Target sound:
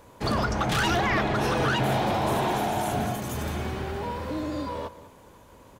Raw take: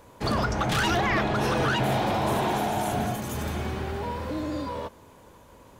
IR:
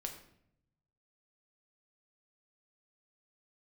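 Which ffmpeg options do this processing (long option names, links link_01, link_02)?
-filter_complex "[0:a]asplit=2[link_01][link_02];[link_02]adelay=198.3,volume=-15dB,highshelf=frequency=4000:gain=-4.46[link_03];[link_01][link_03]amix=inputs=2:normalize=0"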